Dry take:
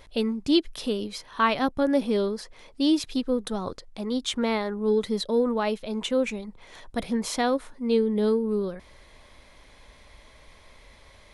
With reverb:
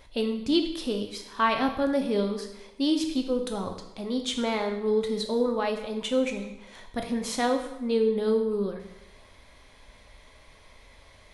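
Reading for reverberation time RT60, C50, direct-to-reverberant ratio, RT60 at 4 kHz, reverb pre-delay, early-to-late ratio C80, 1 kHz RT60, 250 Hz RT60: 0.85 s, 7.5 dB, 4.0 dB, 0.80 s, 5 ms, 10.0 dB, 0.85 s, 0.90 s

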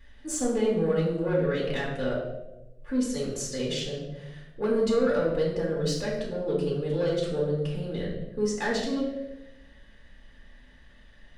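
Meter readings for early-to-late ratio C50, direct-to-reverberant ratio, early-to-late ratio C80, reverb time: 3.0 dB, -4.5 dB, 6.0 dB, 1.0 s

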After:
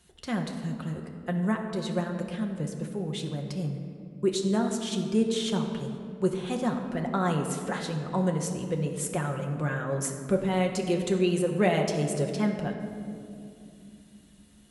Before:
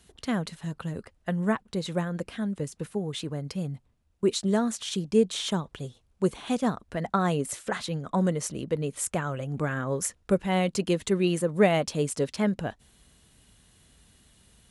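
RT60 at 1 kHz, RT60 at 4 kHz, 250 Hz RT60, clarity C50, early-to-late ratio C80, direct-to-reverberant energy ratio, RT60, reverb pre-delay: 2.2 s, 1.3 s, 4.2 s, 6.0 dB, 7.0 dB, 2.0 dB, 2.5 s, 6 ms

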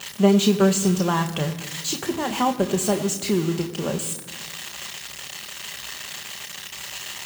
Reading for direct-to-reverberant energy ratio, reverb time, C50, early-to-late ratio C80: 5.0 dB, 1.6 s, 12.5 dB, 13.5 dB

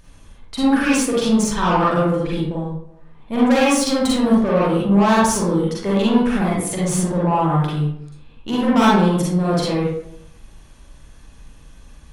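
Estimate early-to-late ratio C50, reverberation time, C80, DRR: -2.0 dB, 0.75 s, 3.5 dB, -7.0 dB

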